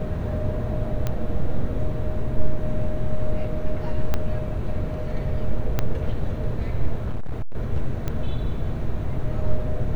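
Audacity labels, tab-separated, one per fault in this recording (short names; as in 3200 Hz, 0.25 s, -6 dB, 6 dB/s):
1.070000	1.070000	pop -12 dBFS
4.140000	4.140000	pop -9 dBFS
5.790000	5.790000	pop -8 dBFS
7.040000	7.550000	clipped -20.5 dBFS
8.080000	8.080000	pop -14 dBFS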